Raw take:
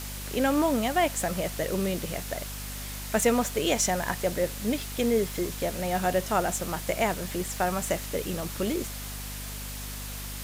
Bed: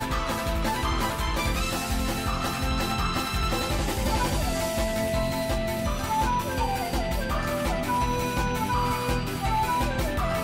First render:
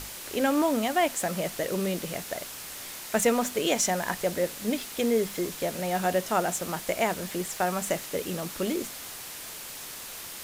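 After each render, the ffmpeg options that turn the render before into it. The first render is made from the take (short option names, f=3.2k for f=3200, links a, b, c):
-af "bandreject=f=50:t=h:w=6,bandreject=f=100:t=h:w=6,bandreject=f=150:t=h:w=6,bandreject=f=200:t=h:w=6,bandreject=f=250:t=h:w=6"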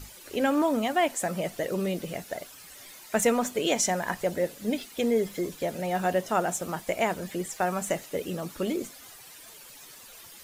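-af "afftdn=nr=12:nf=-41"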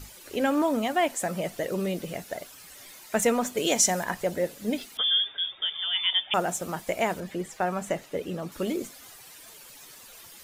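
-filter_complex "[0:a]asettb=1/sr,asplit=3[a][b][c];[a]atrim=end=3.574[d];[b]atrim=start=3.57:end=4.04,asetpts=PTS-STARTPTS,afade=t=in:d=0.004:c=qsin,afade=t=out:st=0.466:d=0.004:c=qsin,bass=f=250:g=1,treble=f=4k:g=6[e];[c]atrim=start=4.036[f];[d][e]acrossfade=d=0.004:c1=hsin:c2=qsin[g];[g][f]acrossfade=d=0.004:c1=qsin:c2=hsin,asettb=1/sr,asplit=3[h][i][j];[h]atrim=end=4.974[k];[i]atrim=start=4.97:end=6.34,asetpts=PTS-STARTPTS,afade=t=in:d=0.004:c=qsin,afade=t=out:st=1.366:d=0.004:c=qsin,lowpass=f=3.1k:t=q:w=0.5098,lowpass=f=3.1k:t=q:w=0.6013,lowpass=f=3.1k:t=q:w=0.9,lowpass=f=3.1k:t=q:w=2.563,afreqshift=-3700[l];[j]atrim=start=6.336[m];[k][l]acrossfade=d=0.004:c1=hsin:c2=qsin[n];[n][m]acrossfade=d=0.004:c1=qsin:c2=hsin,asettb=1/sr,asplit=3[o][p][q];[o]atrim=end=7.204[r];[p]atrim=start=7.2:end=8.52,asetpts=PTS-STARTPTS,afade=t=in:d=0.004:c=qsin,afade=t=out:st=1.316:d=0.004:c=qsin,highshelf=f=5.1k:g=-10[s];[q]atrim=start=8.516[t];[r][s]acrossfade=d=0.004:c1=hsin:c2=qsin[u];[u][t]acrossfade=d=0.004:c1=qsin:c2=hsin"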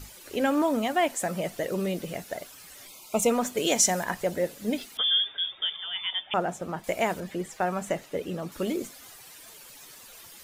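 -filter_complex "[0:a]asplit=3[a][b][c];[a]afade=t=out:st=2.87:d=0.02[d];[b]asuperstop=centerf=1700:order=8:qfactor=2.1,afade=t=in:st=2.87:d=0.02,afade=t=out:st=3.29:d=0.02[e];[c]afade=t=in:st=3.29:d=0.02[f];[d][e][f]amix=inputs=3:normalize=0,asettb=1/sr,asplit=3[g][h][i];[g]atrim=end=5.764[j];[h]atrim=start=5.76:end=6.84,asetpts=PTS-STARTPTS,afade=t=in:d=0.004:c=qsin,afade=t=out:st=1.076:d=0.004:c=qsin,lowpass=f=1.8k:p=1[k];[i]atrim=start=6.836[l];[j][k]acrossfade=d=0.004:c1=hsin:c2=qsin[m];[m][l]acrossfade=d=0.004:c1=qsin:c2=hsin"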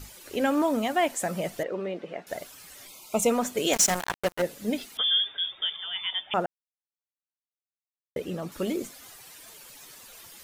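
-filter_complex "[0:a]asettb=1/sr,asplit=3[a][b][c];[a]atrim=end=1.634[d];[b]atrim=start=1.63:end=2.27,asetpts=PTS-STARTPTS,afade=t=in:d=0.004:c=qsin,afade=t=out:st=0.636:d=0.004:c=qsin,highpass=310,lowpass=2.2k[e];[c]atrim=start=2.266[f];[d][e]acrossfade=d=0.004:c1=hsin:c2=qsin[g];[g][f]acrossfade=d=0.004:c1=qsin:c2=hsin,asettb=1/sr,asplit=3[h][i][j];[h]atrim=end=3.734[k];[i]atrim=start=3.73:end=4.42,asetpts=PTS-STARTPTS,afade=t=in:d=0.004:c=qsin,afade=t=out:st=0.686:d=0.004:c=qsin,acrusher=bits=3:mix=0:aa=0.5[l];[j]atrim=start=4.416[m];[k][l]acrossfade=d=0.004:c1=hsin:c2=qsin[n];[n][m]acrossfade=d=0.004:c1=qsin:c2=hsin,asplit=3[o][p][q];[o]atrim=end=6.46,asetpts=PTS-STARTPTS,afade=t=out:st=6.456:d=0.004:c=hsin[r];[p]atrim=start=6.46:end=8.16,asetpts=PTS-STARTPTS,volume=0[s];[q]atrim=start=8.16,asetpts=PTS-STARTPTS,afade=t=in:d=0.004:c=hsin[t];[r][s][t]concat=n=3:v=0:a=1"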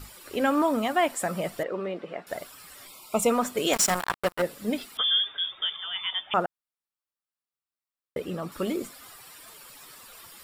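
-af "equalizer=f=1.2k:t=o:w=0.55:g=6.5,bandreject=f=6.3k:w=6.2"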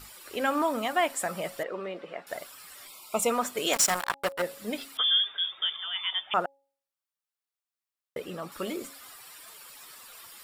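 -af "lowshelf=f=410:g=-9,bandreject=f=275.6:t=h:w=4,bandreject=f=551.2:t=h:w=4,bandreject=f=826.8:t=h:w=4"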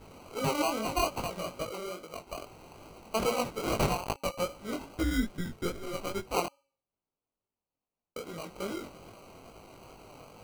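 -af "acrusher=samples=25:mix=1:aa=0.000001,flanger=delay=18.5:depth=4.8:speed=2.4"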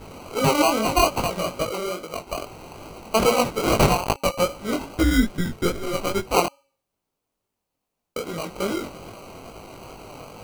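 -af "volume=10.5dB"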